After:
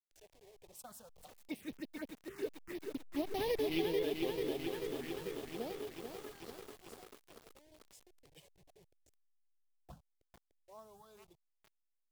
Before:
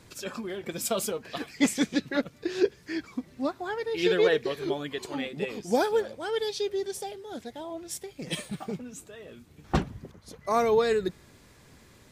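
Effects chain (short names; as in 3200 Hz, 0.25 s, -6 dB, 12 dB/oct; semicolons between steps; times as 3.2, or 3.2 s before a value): level-crossing sampler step -32.5 dBFS; Doppler pass-by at 3.55, 25 m/s, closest 1.4 m; compressor 8:1, threshold -44 dBFS, peak gain reduction 15 dB; envelope phaser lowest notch 170 Hz, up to 1400 Hz, full sweep at -52 dBFS; lo-fi delay 0.44 s, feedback 80%, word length 11-bit, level -5 dB; gain +13.5 dB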